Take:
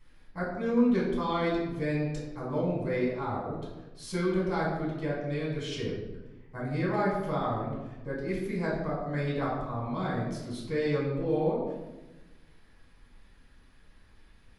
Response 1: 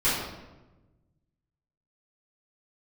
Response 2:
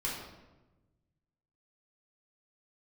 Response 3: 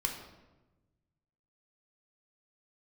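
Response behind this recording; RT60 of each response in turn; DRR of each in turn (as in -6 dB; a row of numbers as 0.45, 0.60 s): 2; 1.1, 1.1, 1.1 s; -13.5, -6.0, 1.5 dB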